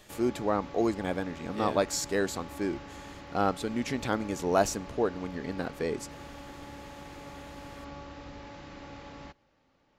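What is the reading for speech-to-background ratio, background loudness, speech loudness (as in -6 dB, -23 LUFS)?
14.0 dB, -45.0 LUFS, -31.0 LUFS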